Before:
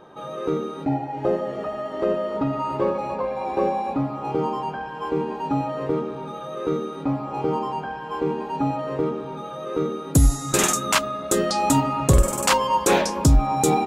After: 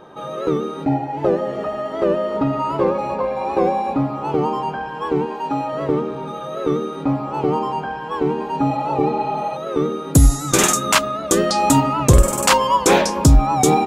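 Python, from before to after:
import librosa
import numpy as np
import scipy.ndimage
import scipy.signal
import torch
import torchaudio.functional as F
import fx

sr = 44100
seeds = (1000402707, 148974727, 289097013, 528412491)

y = fx.low_shelf(x, sr, hz=230.0, db=-12.0, at=(5.26, 5.73))
y = fx.spec_repair(y, sr, seeds[0], start_s=8.73, length_s=0.81, low_hz=600.0, high_hz=4700.0, source='before')
y = fx.record_warp(y, sr, rpm=78.0, depth_cents=100.0)
y = F.gain(torch.from_numpy(y), 4.5).numpy()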